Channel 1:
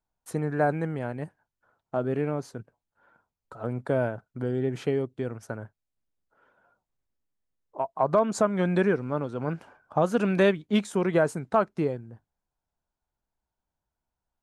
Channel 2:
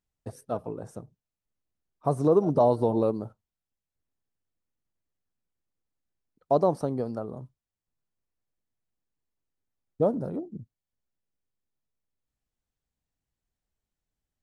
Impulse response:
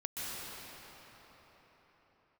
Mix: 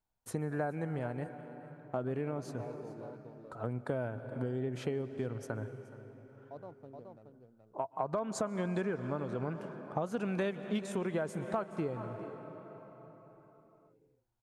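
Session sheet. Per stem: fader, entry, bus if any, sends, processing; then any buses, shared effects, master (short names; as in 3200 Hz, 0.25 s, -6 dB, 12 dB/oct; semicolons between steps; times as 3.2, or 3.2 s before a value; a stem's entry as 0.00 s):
-3.5 dB, 0.00 s, send -16.5 dB, echo send -18.5 dB, bell 110 Hz +4.5 dB 0.29 oct
-19.5 dB, 0.00 s, no send, echo send -10 dB, Wiener smoothing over 25 samples; auto duck -6 dB, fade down 0.80 s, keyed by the first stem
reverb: on, pre-delay 0.118 s
echo: echo 0.424 s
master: compressor 4:1, threshold -32 dBFS, peak gain reduction 11.5 dB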